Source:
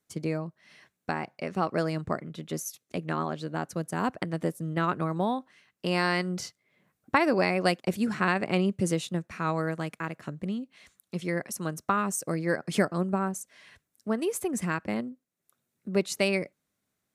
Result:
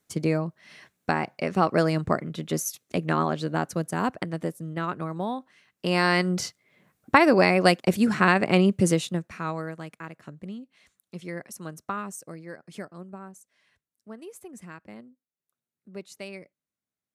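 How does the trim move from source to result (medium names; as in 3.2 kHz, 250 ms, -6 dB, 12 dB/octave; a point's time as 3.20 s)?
3.51 s +6 dB
4.73 s -2.5 dB
5.23 s -2.5 dB
6.27 s +6 dB
8.87 s +6 dB
9.75 s -5.5 dB
11.98 s -5.5 dB
12.52 s -13.5 dB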